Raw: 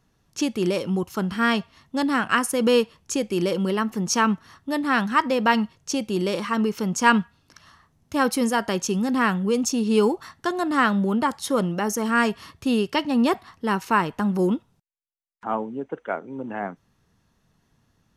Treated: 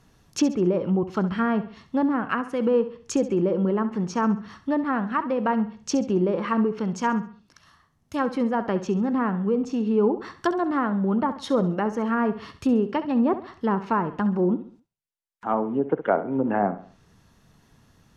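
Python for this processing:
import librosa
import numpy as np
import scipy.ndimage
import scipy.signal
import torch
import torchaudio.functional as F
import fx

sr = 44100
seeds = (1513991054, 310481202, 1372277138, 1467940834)

y = fx.rider(x, sr, range_db=10, speed_s=0.5)
y = fx.env_lowpass_down(y, sr, base_hz=960.0, full_db=-18.5)
y = fx.echo_feedback(y, sr, ms=67, feedback_pct=38, wet_db=-13)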